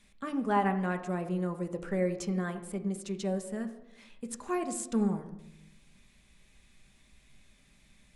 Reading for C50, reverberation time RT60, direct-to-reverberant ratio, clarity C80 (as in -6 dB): 11.5 dB, 0.85 s, 5.5 dB, 13.5 dB